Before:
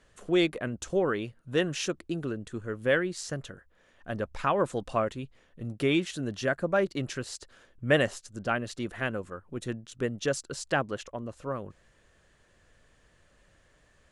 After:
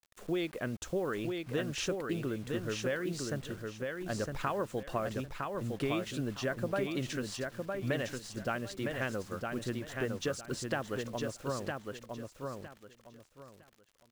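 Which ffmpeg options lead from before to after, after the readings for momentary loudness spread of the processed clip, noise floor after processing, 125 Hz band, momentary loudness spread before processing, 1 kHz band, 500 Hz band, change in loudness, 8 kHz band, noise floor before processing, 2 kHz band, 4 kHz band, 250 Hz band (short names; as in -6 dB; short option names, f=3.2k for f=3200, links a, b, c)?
8 LU, -64 dBFS, -3.0 dB, 13 LU, -5.5 dB, -5.5 dB, -5.5 dB, -3.0 dB, -64 dBFS, -6.5 dB, -5.0 dB, -4.5 dB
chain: -af "highshelf=f=7.6k:g=-6.5,acompressor=threshold=-28dB:ratio=12,acrusher=bits=8:mix=0:aa=0.000001,aecho=1:1:959|1918|2877:0.631|0.151|0.0363,volume=-1.5dB"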